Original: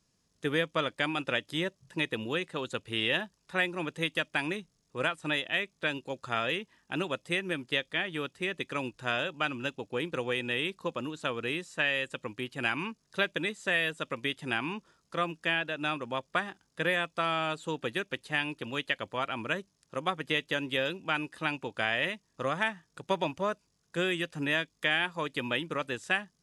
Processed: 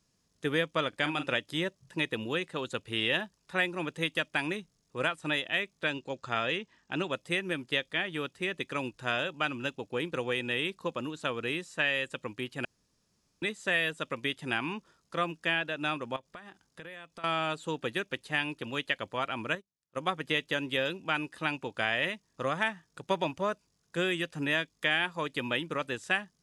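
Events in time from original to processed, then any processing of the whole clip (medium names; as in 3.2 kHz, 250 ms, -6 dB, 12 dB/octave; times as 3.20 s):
0.89–1.35 s: doubling 40 ms -10.5 dB
5.90–7.13 s: low-pass 7.9 kHz 24 dB/octave
12.65–13.42 s: room tone
16.16–17.24 s: compression 5:1, threshold -44 dBFS
19.55–20.00 s: upward expansion 2.5:1, over -46 dBFS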